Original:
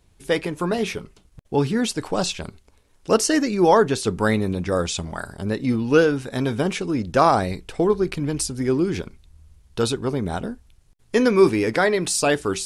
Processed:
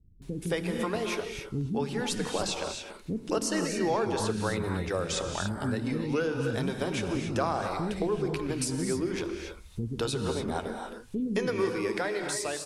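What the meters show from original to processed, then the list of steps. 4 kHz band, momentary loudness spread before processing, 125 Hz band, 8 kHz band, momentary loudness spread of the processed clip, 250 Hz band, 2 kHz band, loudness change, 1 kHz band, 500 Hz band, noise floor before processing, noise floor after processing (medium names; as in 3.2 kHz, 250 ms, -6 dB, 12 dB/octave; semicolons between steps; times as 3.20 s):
-6.5 dB, 12 LU, -6.5 dB, -7.5 dB, 8 LU, -8.5 dB, -8.5 dB, -9.5 dB, -10.0 dB, -10.0 dB, -58 dBFS, -48 dBFS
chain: fade out at the end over 1.42 s; bands offset in time lows, highs 220 ms, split 270 Hz; compression 3:1, threshold -30 dBFS, peak gain reduction 14.5 dB; gated-style reverb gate 310 ms rising, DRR 4 dB; tape noise reduction on one side only encoder only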